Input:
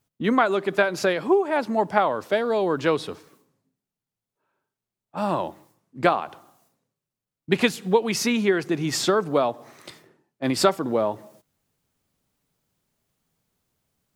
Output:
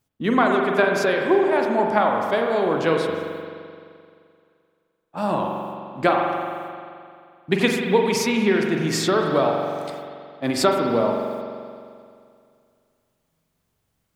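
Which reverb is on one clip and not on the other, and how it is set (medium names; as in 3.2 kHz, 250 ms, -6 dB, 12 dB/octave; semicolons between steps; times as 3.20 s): spring tank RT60 2.3 s, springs 43 ms, chirp 75 ms, DRR 1 dB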